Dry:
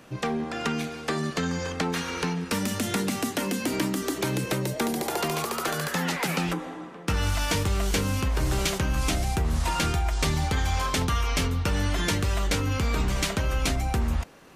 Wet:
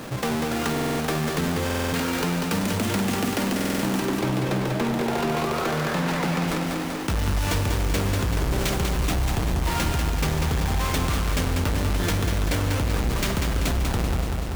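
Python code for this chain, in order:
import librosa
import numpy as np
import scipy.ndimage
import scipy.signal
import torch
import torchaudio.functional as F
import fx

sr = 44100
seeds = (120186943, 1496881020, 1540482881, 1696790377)

y = fx.halfwave_hold(x, sr)
y = fx.high_shelf(y, sr, hz=4500.0, db=-9.5, at=(4.0, 6.48))
y = fx.echo_feedback(y, sr, ms=193, feedback_pct=56, wet_db=-5.5)
y = fx.buffer_glitch(y, sr, at_s=(0.72, 1.65, 3.55), block=2048, repeats=5)
y = fx.env_flatten(y, sr, amount_pct=50)
y = F.gain(torch.from_numpy(y), -5.5).numpy()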